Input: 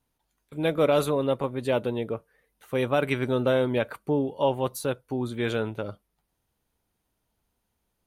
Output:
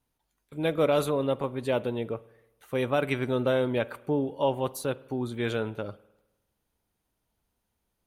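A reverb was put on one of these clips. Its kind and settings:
spring reverb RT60 1 s, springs 51 ms, chirp 80 ms, DRR 19.5 dB
level −2 dB

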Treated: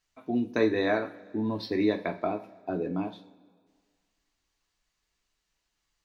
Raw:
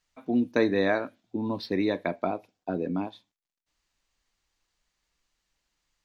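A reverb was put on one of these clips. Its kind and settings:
coupled-rooms reverb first 0.29 s, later 1.8 s, from −20 dB, DRR 4 dB
level −2.5 dB

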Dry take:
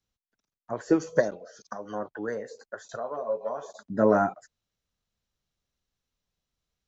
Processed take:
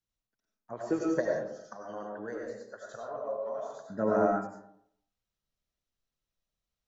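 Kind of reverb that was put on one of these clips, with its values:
comb and all-pass reverb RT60 0.72 s, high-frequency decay 0.45×, pre-delay 55 ms, DRR −1 dB
level −8.5 dB

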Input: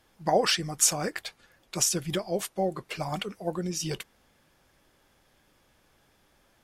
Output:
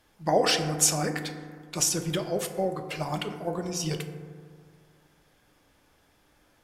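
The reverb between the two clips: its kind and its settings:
feedback delay network reverb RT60 1.9 s, low-frequency decay 1.1×, high-frequency decay 0.3×, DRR 5.5 dB

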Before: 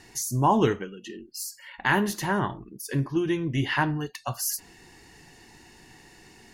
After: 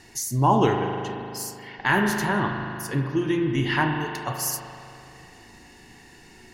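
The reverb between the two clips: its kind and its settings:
spring reverb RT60 2.7 s, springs 38 ms, chirp 35 ms, DRR 2.5 dB
level +1 dB

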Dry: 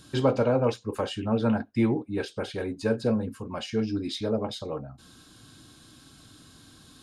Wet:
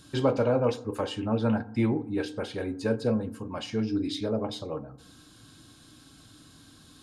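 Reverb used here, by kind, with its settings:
feedback delay network reverb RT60 0.81 s, low-frequency decay 1.3×, high-frequency decay 0.35×, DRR 14 dB
level −1.5 dB

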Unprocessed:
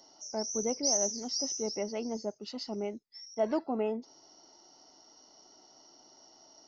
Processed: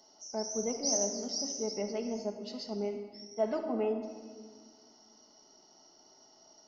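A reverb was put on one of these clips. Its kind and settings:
rectangular room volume 2,300 cubic metres, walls mixed, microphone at 1.4 metres
level −3.5 dB

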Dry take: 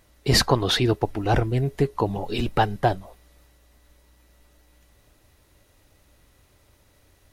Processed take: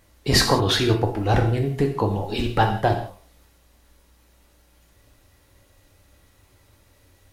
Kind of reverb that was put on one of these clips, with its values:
reverb whose tail is shaped and stops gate 210 ms falling, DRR 2.5 dB

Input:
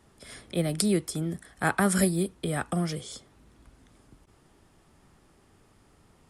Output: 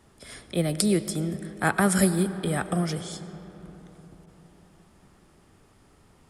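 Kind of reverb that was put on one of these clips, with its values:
comb and all-pass reverb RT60 4.3 s, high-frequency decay 0.4×, pre-delay 60 ms, DRR 12.5 dB
level +2 dB

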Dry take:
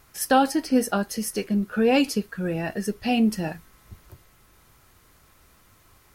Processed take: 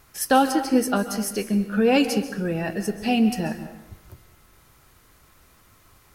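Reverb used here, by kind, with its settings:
dense smooth reverb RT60 0.94 s, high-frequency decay 0.65×, pre-delay 120 ms, DRR 10 dB
level +1 dB

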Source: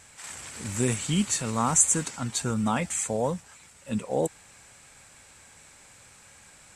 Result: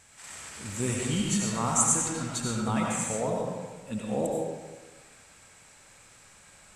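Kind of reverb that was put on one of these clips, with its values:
comb and all-pass reverb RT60 1.3 s, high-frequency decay 0.7×, pre-delay 50 ms, DRR −2 dB
level −5 dB

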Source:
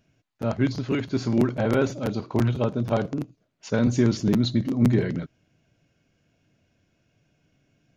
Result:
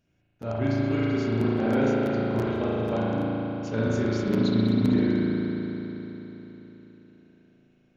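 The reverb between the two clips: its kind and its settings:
spring reverb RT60 3.9 s, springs 36 ms, chirp 30 ms, DRR −7.5 dB
level −8 dB

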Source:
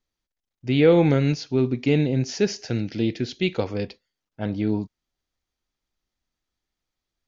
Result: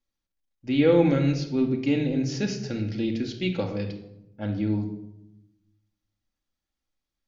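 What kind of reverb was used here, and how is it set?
rectangular room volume 2,500 cubic metres, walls furnished, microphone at 2.3 metres
level −5.5 dB

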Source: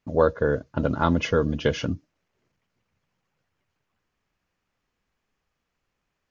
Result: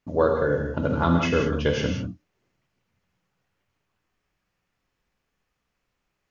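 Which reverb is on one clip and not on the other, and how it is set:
reverb whose tail is shaped and stops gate 220 ms flat, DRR 1 dB
level −1.5 dB

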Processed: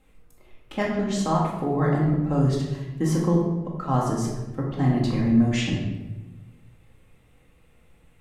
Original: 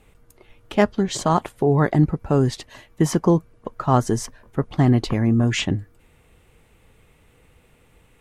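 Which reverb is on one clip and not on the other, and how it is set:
rectangular room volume 570 cubic metres, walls mixed, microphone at 2.1 metres
level −9.5 dB

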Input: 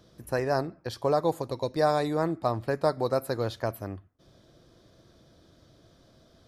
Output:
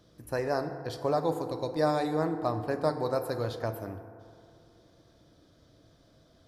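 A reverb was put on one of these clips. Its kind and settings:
feedback delay network reverb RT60 2.4 s, low-frequency decay 0.8×, high-frequency decay 0.35×, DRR 7 dB
level −3.5 dB

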